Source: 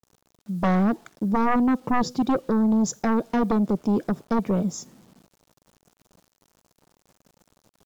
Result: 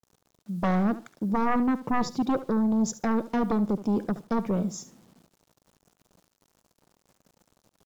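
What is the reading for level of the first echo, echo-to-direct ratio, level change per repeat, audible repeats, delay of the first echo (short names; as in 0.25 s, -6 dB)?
-15.0 dB, -15.0 dB, -15.5 dB, 2, 72 ms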